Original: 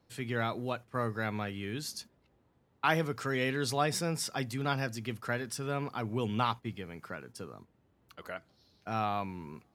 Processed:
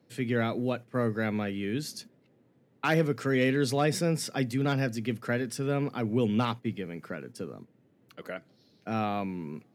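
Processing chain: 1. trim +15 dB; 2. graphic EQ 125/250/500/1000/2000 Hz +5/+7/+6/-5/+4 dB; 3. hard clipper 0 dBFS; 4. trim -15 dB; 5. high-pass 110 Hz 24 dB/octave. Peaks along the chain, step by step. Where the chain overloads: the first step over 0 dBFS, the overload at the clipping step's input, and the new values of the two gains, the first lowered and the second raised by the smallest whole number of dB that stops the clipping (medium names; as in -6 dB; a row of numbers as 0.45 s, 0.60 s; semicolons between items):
+2.5 dBFS, +5.0 dBFS, 0.0 dBFS, -15.0 dBFS, -12.5 dBFS; step 1, 5.0 dB; step 1 +10 dB, step 4 -10 dB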